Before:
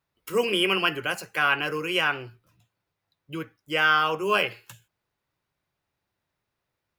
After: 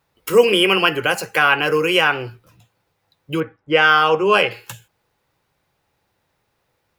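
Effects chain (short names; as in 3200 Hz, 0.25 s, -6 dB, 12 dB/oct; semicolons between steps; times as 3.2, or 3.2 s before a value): 3.4–4.51 low-pass opened by the level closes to 1500 Hz, open at -16 dBFS; in parallel at +3 dB: compressor, threshold -30 dBFS, peak gain reduction 13 dB; on the sum: small resonant body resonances 490/810 Hz, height 6 dB, ringing for 30 ms; gain +4 dB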